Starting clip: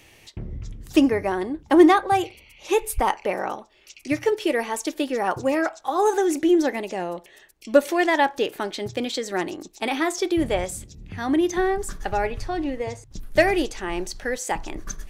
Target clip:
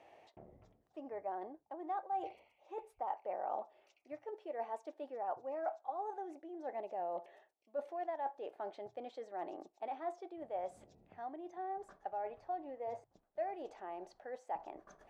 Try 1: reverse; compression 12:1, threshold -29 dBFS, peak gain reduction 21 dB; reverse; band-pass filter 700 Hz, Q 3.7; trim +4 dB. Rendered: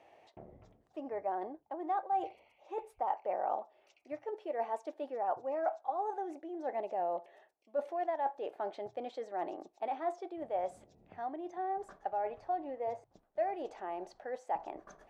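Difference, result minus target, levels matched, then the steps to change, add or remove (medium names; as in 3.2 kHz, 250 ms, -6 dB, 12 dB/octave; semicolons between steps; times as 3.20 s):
compression: peak gain reduction -5.5 dB
change: compression 12:1, threshold -35 dBFS, peak gain reduction 26.5 dB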